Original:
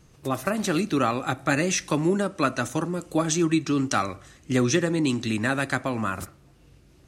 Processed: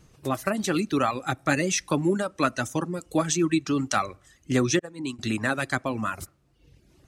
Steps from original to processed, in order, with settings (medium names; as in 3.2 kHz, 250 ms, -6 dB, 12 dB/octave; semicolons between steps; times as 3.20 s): 4.79–5.19 s: expander -16 dBFS; reverb removal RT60 0.88 s